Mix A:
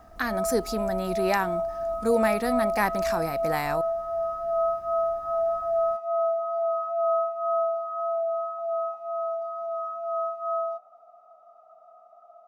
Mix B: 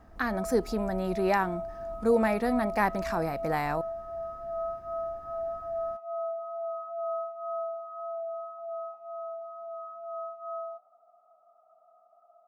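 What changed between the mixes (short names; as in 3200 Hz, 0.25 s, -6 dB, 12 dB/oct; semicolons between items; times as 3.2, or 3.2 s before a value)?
background -8.0 dB; master: add high shelf 3100 Hz -10.5 dB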